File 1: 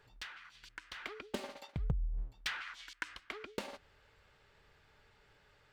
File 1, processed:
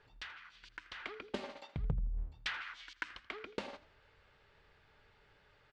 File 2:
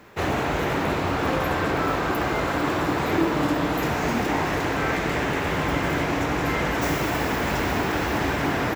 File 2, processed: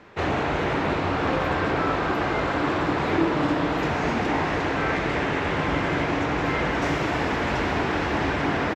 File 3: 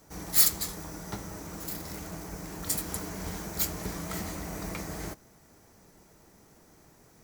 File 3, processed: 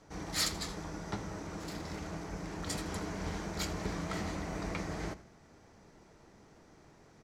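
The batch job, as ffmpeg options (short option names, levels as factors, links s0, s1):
-filter_complex "[0:a]lowpass=4700,bandreject=f=60:t=h:w=6,bandreject=f=120:t=h:w=6,bandreject=f=180:t=h:w=6,bandreject=f=240:t=h:w=6,asplit=2[s0][s1];[s1]asplit=3[s2][s3][s4];[s2]adelay=82,afreqshift=36,volume=0.119[s5];[s3]adelay=164,afreqshift=72,volume=0.0367[s6];[s4]adelay=246,afreqshift=108,volume=0.0115[s7];[s5][s6][s7]amix=inputs=3:normalize=0[s8];[s0][s8]amix=inputs=2:normalize=0"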